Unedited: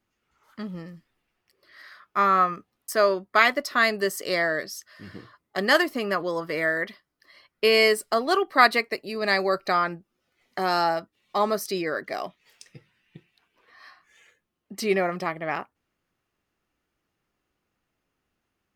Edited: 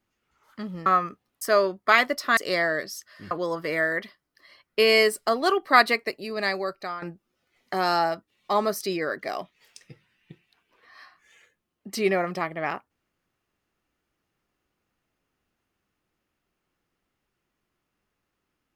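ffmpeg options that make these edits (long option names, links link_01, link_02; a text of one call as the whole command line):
ffmpeg -i in.wav -filter_complex "[0:a]asplit=5[link_01][link_02][link_03][link_04][link_05];[link_01]atrim=end=0.862[link_06];[link_02]atrim=start=2.328:end=3.842[link_07];[link_03]atrim=start=4.168:end=5.112[link_08];[link_04]atrim=start=6.158:end=9.87,asetpts=PTS-STARTPTS,afade=type=out:start_time=2.782:duration=0.93:silence=0.199526[link_09];[link_05]atrim=start=9.87,asetpts=PTS-STARTPTS,afade=type=in:duration=0.004:curve=hsin:silence=0.199526[link_10];[link_06][link_07]acrossfade=duration=0.004:curve1=hsin:curve2=hsin[link_11];[link_11][link_08]acrossfade=duration=0.004:curve1=hsin:curve2=hsin[link_12];[link_09][link_10]concat=n=2:v=0:a=1[link_13];[link_12][link_13]acrossfade=duration=0.004:curve1=hsin:curve2=hsin" out.wav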